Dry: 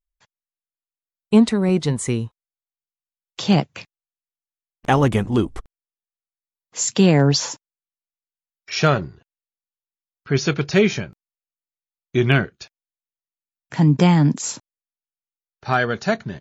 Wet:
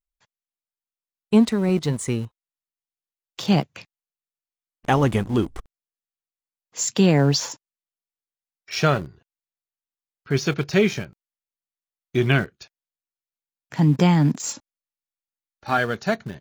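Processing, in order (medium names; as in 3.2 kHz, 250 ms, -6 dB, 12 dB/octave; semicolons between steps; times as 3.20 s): 14.47–15.78 s: comb 3.6 ms, depth 56%; in parallel at -9 dB: small samples zeroed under -24.5 dBFS; on the sum: trim -5 dB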